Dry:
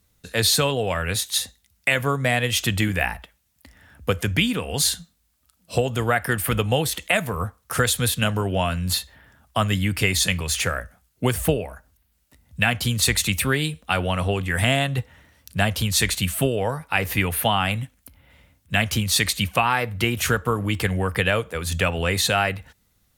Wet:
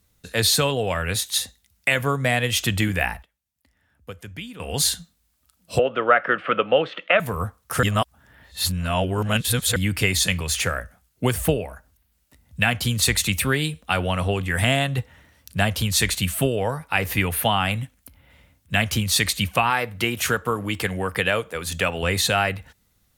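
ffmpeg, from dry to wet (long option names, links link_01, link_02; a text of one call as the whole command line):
ffmpeg -i in.wav -filter_complex "[0:a]asettb=1/sr,asplit=3[link_01][link_02][link_03];[link_01]atrim=end=5.794[link_04];[link_02]atrim=start=5.79:end=7.2,asetpts=PTS-STARTPTS,afade=type=in:duration=0.004:curve=qsin,afade=type=out:start_time=1.406:duration=0.004:curve=qsin,highpass=frequency=200:width=0.5412,highpass=frequency=200:width=1.3066,equalizer=frequency=230:width_type=q:width=4:gain=-5,equalizer=frequency=560:width_type=q:width=4:gain=9,equalizer=frequency=850:width_type=q:width=4:gain=-3,equalizer=frequency=1300:width_type=q:width=4:gain=10,equalizer=frequency=2900:width_type=q:width=4:gain=4,lowpass=frequency=2900:width=0.5412,lowpass=frequency=2900:width=1.3066[link_05];[link_03]atrim=start=7.196[link_06];[link_04][link_05]acrossfade=duration=0.004:curve1=hsin:curve2=qsin[link_07];[link_07][link_06]acrossfade=duration=0.004:curve1=qsin:curve2=hsin,asettb=1/sr,asplit=3[link_08][link_09][link_10];[link_08]atrim=end=19.704[link_11];[link_09]atrim=start=19.7:end=22.03,asetpts=PTS-STARTPTS,afade=type=in:duration=0.004:curve=qsin,afade=type=out:start_time=2.326:duration=0.004:curve=qsin,lowshelf=frequency=110:gain=-12[link_12];[link_10]atrim=start=22.026[link_13];[link_11][link_12]acrossfade=duration=0.004:curve1=hsin:curve2=qsin[link_14];[link_14][link_13]acrossfade=duration=0.004:curve1=qsin:curve2=hsin,asplit=5[link_15][link_16][link_17][link_18][link_19];[link_15]atrim=end=3.23,asetpts=PTS-STARTPTS,afade=type=out:start_time=3.09:duration=0.14:curve=log:silence=0.177828[link_20];[link_16]atrim=start=3.23:end=4.6,asetpts=PTS-STARTPTS,volume=-15dB[link_21];[link_17]atrim=start=4.6:end=7.832,asetpts=PTS-STARTPTS,afade=type=in:duration=0.14:curve=log:silence=0.177828[link_22];[link_18]atrim=start=7.828:end=9.762,asetpts=PTS-STARTPTS,areverse[link_23];[link_19]atrim=start=9.758[link_24];[link_20][link_21][link_22]concat=n=3:v=0:a=1[link_25];[link_25][link_23]acrossfade=duration=0.004:curve1=hsin:curve2=hsin[link_26];[link_26][link_24]acrossfade=duration=0.004:curve1=hsin:curve2=hsin" out.wav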